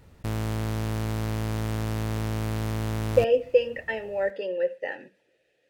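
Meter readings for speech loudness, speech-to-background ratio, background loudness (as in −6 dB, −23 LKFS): −26.5 LKFS, 3.5 dB, −30.0 LKFS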